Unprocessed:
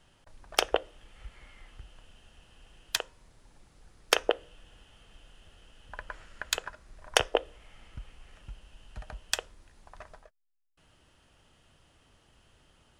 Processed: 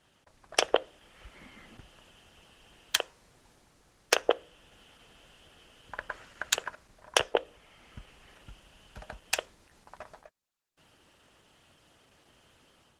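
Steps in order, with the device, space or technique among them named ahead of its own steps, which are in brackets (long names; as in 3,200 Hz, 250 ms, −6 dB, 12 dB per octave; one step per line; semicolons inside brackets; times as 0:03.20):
0:01.34–0:01.81: parametric band 230 Hz +13.5 dB 0.87 octaves
video call (high-pass filter 170 Hz 6 dB per octave; automatic gain control gain up to 4.5 dB; Opus 16 kbit/s 48,000 Hz)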